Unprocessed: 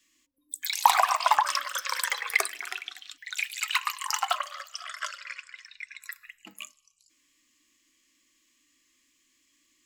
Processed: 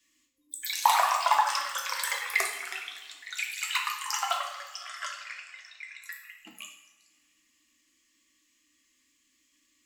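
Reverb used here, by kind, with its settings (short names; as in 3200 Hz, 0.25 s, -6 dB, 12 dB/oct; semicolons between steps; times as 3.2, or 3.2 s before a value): two-slope reverb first 0.68 s, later 3 s, from -20 dB, DRR 0.5 dB; gain -4 dB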